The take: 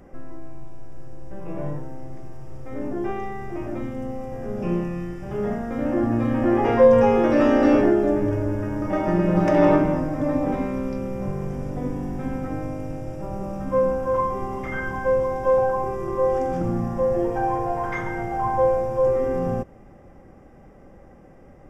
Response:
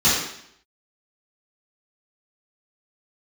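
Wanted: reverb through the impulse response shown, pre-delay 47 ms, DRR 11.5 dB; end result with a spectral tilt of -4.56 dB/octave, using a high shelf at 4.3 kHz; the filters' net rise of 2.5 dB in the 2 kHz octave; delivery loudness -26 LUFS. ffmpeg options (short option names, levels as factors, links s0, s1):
-filter_complex "[0:a]equalizer=f=2000:t=o:g=4,highshelf=f=4300:g=-4.5,asplit=2[s0][s1];[1:a]atrim=start_sample=2205,adelay=47[s2];[s1][s2]afir=irnorm=-1:irlink=0,volume=0.0282[s3];[s0][s3]amix=inputs=2:normalize=0,volume=0.631"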